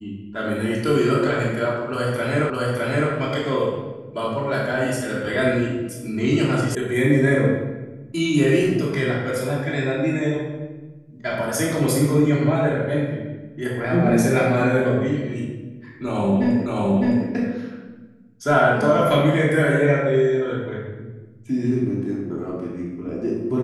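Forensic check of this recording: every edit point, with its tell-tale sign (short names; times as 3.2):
2.5 repeat of the last 0.61 s
6.75 sound cut off
16.66 repeat of the last 0.61 s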